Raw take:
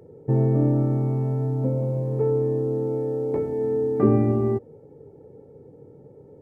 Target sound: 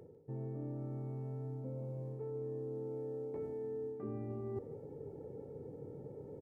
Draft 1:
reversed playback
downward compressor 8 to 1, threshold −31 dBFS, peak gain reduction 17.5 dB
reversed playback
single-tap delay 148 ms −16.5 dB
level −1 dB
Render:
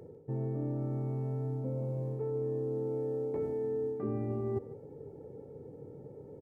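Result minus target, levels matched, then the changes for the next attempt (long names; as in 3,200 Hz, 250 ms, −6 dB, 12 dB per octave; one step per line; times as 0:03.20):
downward compressor: peak gain reduction −7.5 dB
change: downward compressor 8 to 1, threshold −39.5 dBFS, peak gain reduction 25 dB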